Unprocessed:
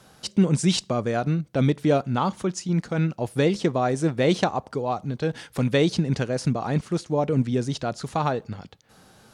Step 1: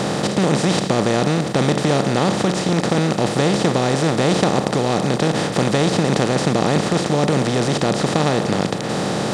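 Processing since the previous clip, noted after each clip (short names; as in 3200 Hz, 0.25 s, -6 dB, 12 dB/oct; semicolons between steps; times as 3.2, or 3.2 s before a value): per-bin compression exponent 0.2; gain -3.5 dB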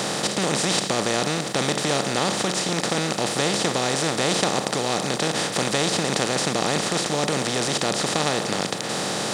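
tilt +2.5 dB/oct; gain -3.5 dB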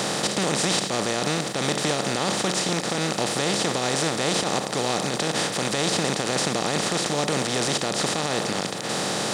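limiter -11.5 dBFS, peak gain reduction 9.5 dB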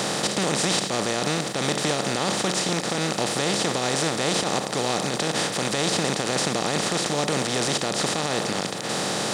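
nothing audible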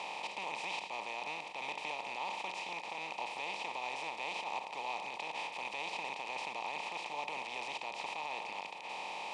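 double band-pass 1500 Hz, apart 1.4 oct; gain -4 dB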